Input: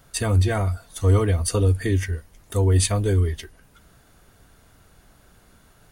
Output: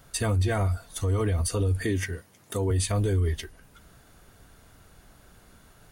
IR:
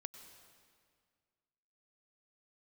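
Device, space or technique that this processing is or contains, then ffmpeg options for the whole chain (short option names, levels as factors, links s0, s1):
stacked limiters: -filter_complex "[0:a]asplit=3[s0][s1][s2];[s0]afade=t=out:st=1.83:d=0.02[s3];[s1]highpass=f=110:w=0.5412,highpass=f=110:w=1.3066,afade=t=in:st=1.83:d=0.02,afade=t=out:st=2.7:d=0.02[s4];[s2]afade=t=in:st=2.7:d=0.02[s5];[s3][s4][s5]amix=inputs=3:normalize=0,alimiter=limit=0.188:level=0:latency=1:release=75,alimiter=limit=0.126:level=0:latency=1:release=38"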